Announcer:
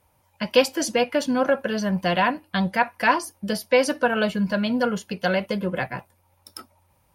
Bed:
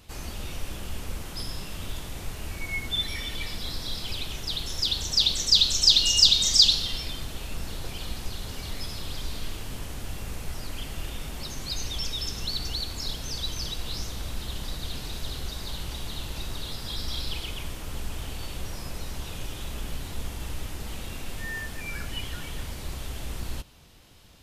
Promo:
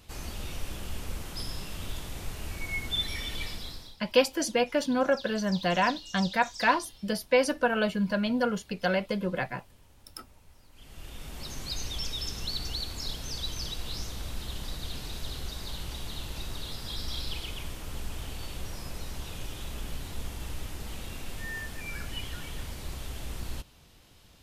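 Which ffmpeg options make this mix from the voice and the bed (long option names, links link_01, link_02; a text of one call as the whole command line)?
ffmpeg -i stem1.wav -i stem2.wav -filter_complex "[0:a]adelay=3600,volume=-4.5dB[link_01];[1:a]volume=18dB,afade=type=out:start_time=3.43:duration=0.53:silence=0.0891251,afade=type=in:start_time=10.72:duration=0.82:silence=0.1[link_02];[link_01][link_02]amix=inputs=2:normalize=0" out.wav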